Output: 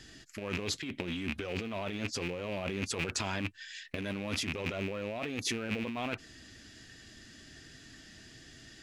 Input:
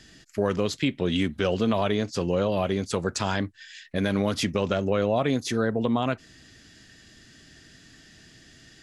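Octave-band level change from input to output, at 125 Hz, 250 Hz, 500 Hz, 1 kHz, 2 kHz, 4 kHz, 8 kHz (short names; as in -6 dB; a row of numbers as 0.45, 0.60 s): -10.5, -11.5, -13.0, -11.5, -4.0, -5.0, -2.5 dB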